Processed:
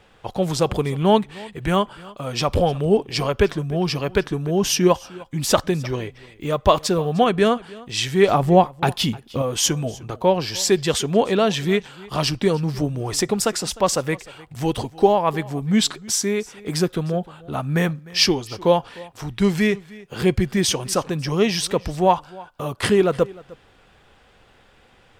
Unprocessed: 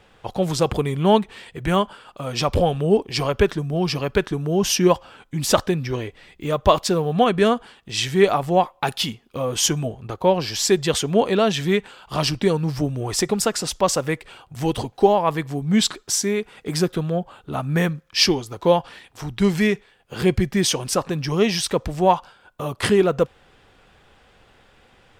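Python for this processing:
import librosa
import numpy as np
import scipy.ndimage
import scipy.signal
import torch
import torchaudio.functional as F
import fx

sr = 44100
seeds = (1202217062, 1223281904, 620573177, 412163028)

y = fx.low_shelf(x, sr, hz=460.0, db=8.5, at=(8.28, 9.42))
y = y + 10.0 ** (-21.5 / 20.0) * np.pad(y, (int(304 * sr / 1000.0), 0))[:len(y)]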